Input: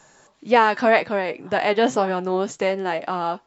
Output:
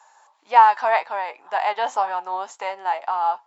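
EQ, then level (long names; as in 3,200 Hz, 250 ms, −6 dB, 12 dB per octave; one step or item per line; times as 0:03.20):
high-pass with resonance 880 Hz, resonance Q 4.9
−6.5 dB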